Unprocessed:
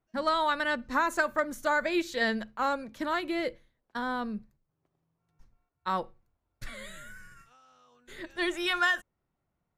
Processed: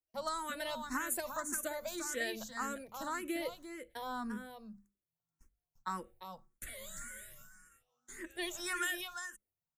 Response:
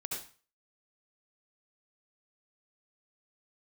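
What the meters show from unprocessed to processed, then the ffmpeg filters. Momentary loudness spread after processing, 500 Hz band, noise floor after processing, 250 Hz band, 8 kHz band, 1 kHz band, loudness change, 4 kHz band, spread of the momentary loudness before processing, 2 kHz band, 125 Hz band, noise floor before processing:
15 LU, -10.0 dB, under -85 dBFS, -9.0 dB, +7.0 dB, -10.5 dB, -10.0 dB, -8.0 dB, 17 LU, -10.5 dB, -8.0 dB, -82 dBFS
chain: -filter_complex "[0:a]aexciter=amount=6:drive=3.5:freq=6.1k,agate=range=-14dB:threshold=-55dB:ratio=16:detection=peak,acrossover=split=180|3000[a][b][c];[b]acompressor=threshold=-30dB:ratio=6[d];[a][d][c]amix=inputs=3:normalize=0,bandreject=f=50:t=h:w=6,bandreject=f=100:t=h:w=6,bandreject=f=150:t=h:w=6,bandreject=f=200:t=h:w=6,aecho=1:1:347:0.422,asplit=2[e][f];[f]afreqshift=1.8[g];[e][g]amix=inputs=2:normalize=1,volume=-3.5dB"

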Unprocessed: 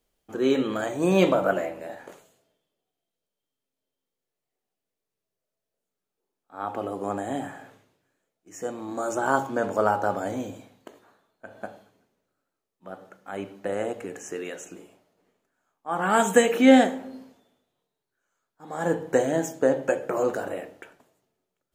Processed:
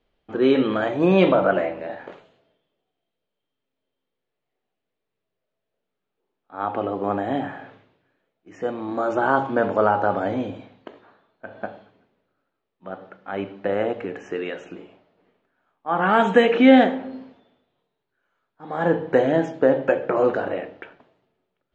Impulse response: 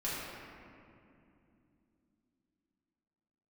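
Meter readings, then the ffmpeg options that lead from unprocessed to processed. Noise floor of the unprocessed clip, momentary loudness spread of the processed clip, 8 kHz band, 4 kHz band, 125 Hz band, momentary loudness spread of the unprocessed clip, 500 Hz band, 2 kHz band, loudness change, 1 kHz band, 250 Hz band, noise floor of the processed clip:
under -85 dBFS, 20 LU, under -15 dB, +2.5 dB, +4.5 dB, 21 LU, +4.0 dB, +4.0 dB, +3.5 dB, +4.0 dB, +4.0 dB, -81 dBFS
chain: -filter_complex "[0:a]lowpass=f=3.7k:w=0.5412,lowpass=f=3.7k:w=1.3066,asplit=2[a][b];[b]alimiter=limit=-15dB:level=0:latency=1,volume=-1dB[c];[a][c]amix=inputs=2:normalize=0"

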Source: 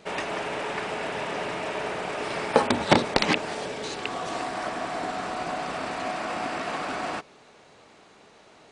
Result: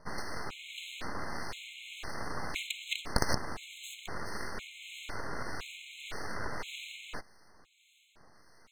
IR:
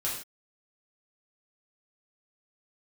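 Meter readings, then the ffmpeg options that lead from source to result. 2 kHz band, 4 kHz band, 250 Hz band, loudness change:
-9.5 dB, -7.5 dB, -14.0 dB, -11.0 dB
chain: -filter_complex "[0:a]acrossover=split=930[a][b];[a]aeval=exprs='val(0)*(1-0.5/2+0.5/2*cos(2*PI*1.7*n/s))':c=same[c];[b]aeval=exprs='val(0)*(1-0.5/2-0.5/2*cos(2*PI*1.7*n/s))':c=same[d];[c][d]amix=inputs=2:normalize=0,aeval=exprs='abs(val(0))':c=same,afftfilt=real='re*gt(sin(2*PI*0.98*pts/sr)*(1-2*mod(floor(b*sr/1024/2100),2)),0)':imag='im*gt(sin(2*PI*0.98*pts/sr)*(1-2*mod(floor(b*sr/1024/2100),2)),0)':win_size=1024:overlap=0.75,volume=-1.5dB"

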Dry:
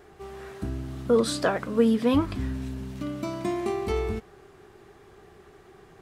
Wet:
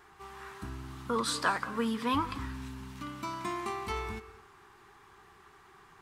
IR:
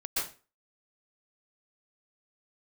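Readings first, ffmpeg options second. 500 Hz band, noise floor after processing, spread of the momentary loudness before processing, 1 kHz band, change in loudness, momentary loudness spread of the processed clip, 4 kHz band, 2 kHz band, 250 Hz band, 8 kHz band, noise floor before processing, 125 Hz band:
-13.0 dB, -58 dBFS, 14 LU, +1.0 dB, -7.5 dB, 15 LU, -1.5 dB, 0.0 dB, -10.5 dB, -2.0 dB, -53 dBFS, -9.5 dB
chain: -filter_complex "[0:a]lowshelf=f=770:t=q:w=3:g=-7.5,asplit=2[a][b];[1:a]atrim=start_sample=2205,adelay=60[c];[b][c]afir=irnorm=-1:irlink=0,volume=-20.5dB[d];[a][d]amix=inputs=2:normalize=0,volume=-2dB"

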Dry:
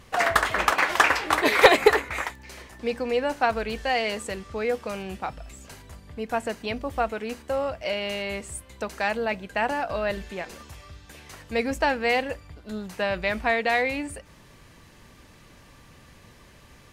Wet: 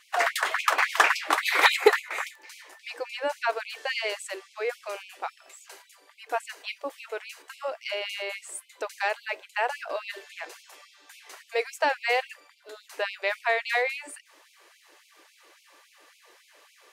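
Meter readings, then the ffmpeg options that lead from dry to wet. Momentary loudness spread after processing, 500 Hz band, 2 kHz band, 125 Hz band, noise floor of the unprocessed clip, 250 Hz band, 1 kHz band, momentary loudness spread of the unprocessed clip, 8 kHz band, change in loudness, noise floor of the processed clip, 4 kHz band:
20 LU, -5.0 dB, -1.5 dB, under -40 dB, -52 dBFS, -15.0 dB, -3.0 dB, 18 LU, -1.0 dB, -2.5 dB, -61 dBFS, -1.0 dB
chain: -af "afftfilt=real='re*gte(b*sr/1024,280*pow(2200/280,0.5+0.5*sin(2*PI*3.6*pts/sr)))':imag='im*gte(b*sr/1024,280*pow(2200/280,0.5+0.5*sin(2*PI*3.6*pts/sr)))':win_size=1024:overlap=0.75,volume=-1dB"

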